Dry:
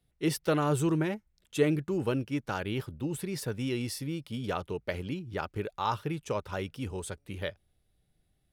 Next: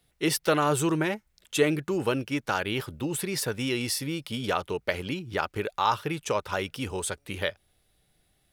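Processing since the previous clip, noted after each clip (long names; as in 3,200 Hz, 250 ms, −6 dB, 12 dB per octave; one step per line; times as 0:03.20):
low-shelf EQ 390 Hz −10.5 dB
in parallel at −1 dB: downward compressor, threshold −41 dBFS, peak gain reduction 16 dB
on the sum: level +6 dB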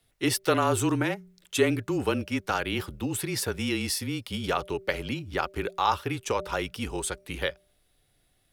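hum removal 207.8 Hz, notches 3
frequency shifter −28 Hz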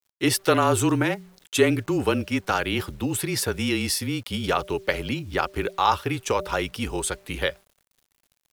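bit reduction 10 bits
level +4 dB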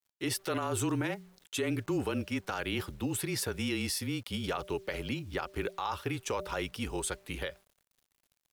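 brickwall limiter −16 dBFS, peak gain reduction 10 dB
level −7 dB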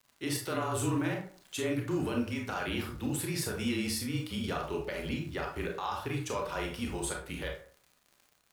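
surface crackle 73 per second −43 dBFS
convolution reverb RT60 0.45 s, pre-delay 22 ms, DRR 0 dB
level −3 dB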